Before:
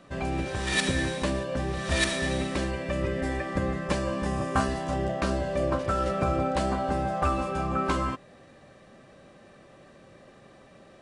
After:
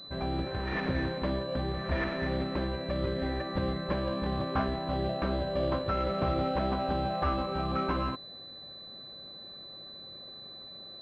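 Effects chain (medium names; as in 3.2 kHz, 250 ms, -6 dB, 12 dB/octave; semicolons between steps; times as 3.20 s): hard clipper -20 dBFS, distortion -19 dB; class-D stage that switches slowly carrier 4 kHz; trim -2.5 dB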